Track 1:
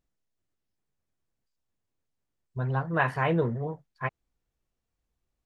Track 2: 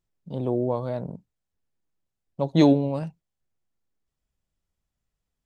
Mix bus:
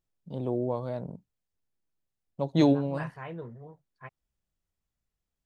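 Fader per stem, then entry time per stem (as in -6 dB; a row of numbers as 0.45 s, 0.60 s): -14.5 dB, -4.5 dB; 0.00 s, 0.00 s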